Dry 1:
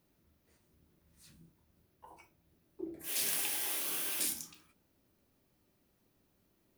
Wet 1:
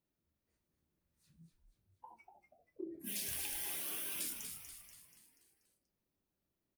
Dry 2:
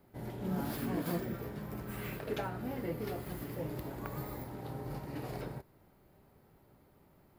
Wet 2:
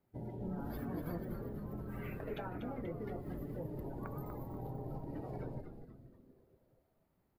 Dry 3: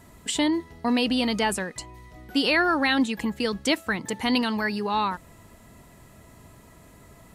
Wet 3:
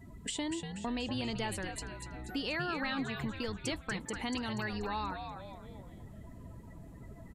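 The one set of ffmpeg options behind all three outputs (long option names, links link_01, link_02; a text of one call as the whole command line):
ffmpeg -i in.wav -filter_complex "[0:a]afftdn=noise_reduction=18:noise_floor=-45,acompressor=threshold=-46dB:ratio=2.5,asplit=7[link_01][link_02][link_03][link_04][link_05][link_06][link_07];[link_02]adelay=241,afreqshift=-130,volume=-6.5dB[link_08];[link_03]adelay=482,afreqshift=-260,volume=-12.7dB[link_09];[link_04]adelay=723,afreqshift=-390,volume=-18.9dB[link_10];[link_05]adelay=964,afreqshift=-520,volume=-25.1dB[link_11];[link_06]adelay=1205,afreqshift=-650,volume=-31.3dB[link_12];[link_07]adelay=1446,afreqshift=-780,volume=-37.5dB[link_13];[link_01][link_08][link_09][link_10][link_11][link_12][link_13]amix=inputs=7:normalize=0,volume=3dB" out.wav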